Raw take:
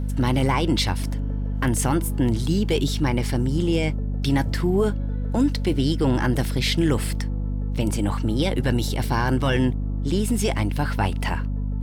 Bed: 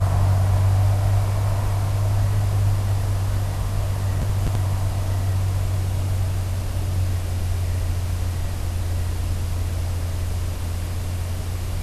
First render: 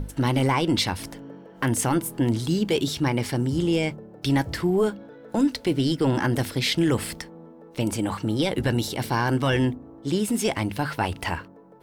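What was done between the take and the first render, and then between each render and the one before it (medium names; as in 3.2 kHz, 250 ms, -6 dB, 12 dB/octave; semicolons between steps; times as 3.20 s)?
hum notches 50/100/150/200/250 Hz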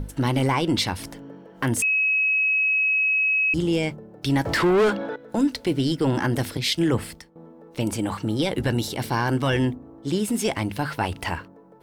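1.82–3.54 s: bleep 2.56 kHz -18 dBFS; 4.45–5.16 s: overdrive pedal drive 26 dB, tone 2.8 kHz, clips at -12 dBFS; 6.57–7.36 s: three bands expanded up and down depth 100%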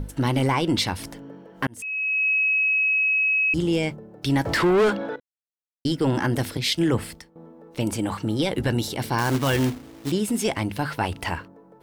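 1.67–2.28 s: fade in; 5.20–5.85 s: mute; 9.18–10.12 s: companded quantiser 4-bit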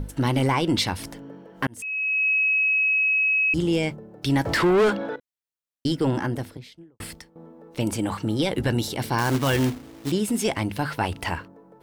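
5.86–7.00 s: studio fade out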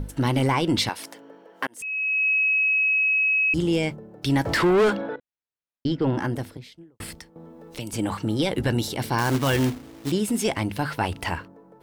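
0.89–1.81 s: high-pass 430 Hz; 5.01–6.18 s: distance through air 190 m; 7.08–7.94 s: three bands compressed up and down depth 70%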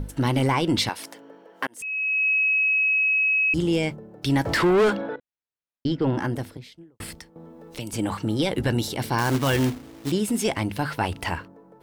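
no audible change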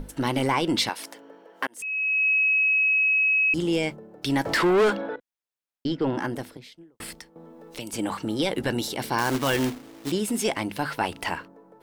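peaking EQ 83 Hz -14 dB 1.5 oct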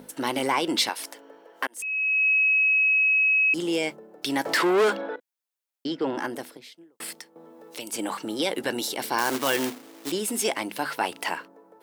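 high-pass 290 Hz 12 dB/octave; treble shelf 7 kHz +5.5 dB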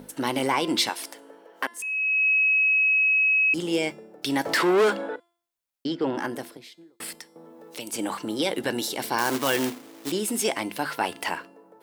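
bass shelf 120 Hz +11 dB; de-hum 343.6 Hz, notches 34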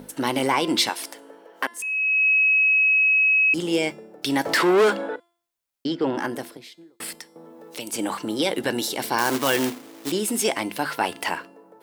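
trim +2.5 dB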